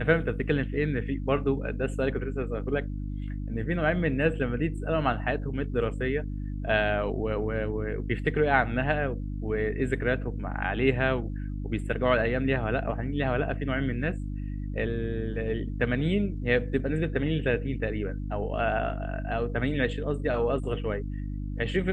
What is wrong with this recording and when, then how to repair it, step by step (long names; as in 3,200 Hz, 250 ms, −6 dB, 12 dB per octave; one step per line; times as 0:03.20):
mains hum 50 Hz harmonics 6 −33 dBFS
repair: hum removal 50 Hz, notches 6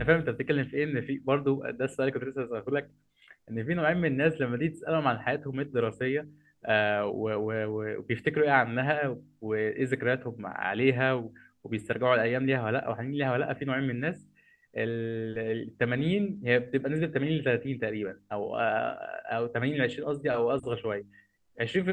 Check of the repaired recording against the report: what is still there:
none of them is left